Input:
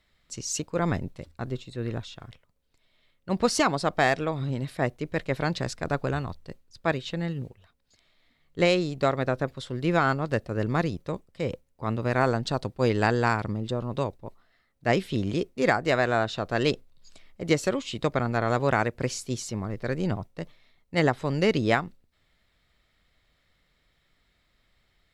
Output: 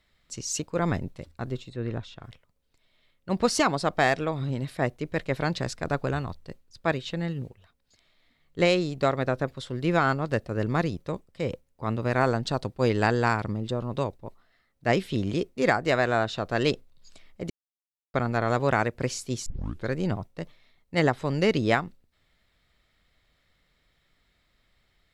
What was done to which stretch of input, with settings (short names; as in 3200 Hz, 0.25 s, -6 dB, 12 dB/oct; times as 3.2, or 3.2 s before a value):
1.69–2.24 high shelf 5200 Hz -11 dB
17.5–18.14 mute
19.46 tape start 0.42 s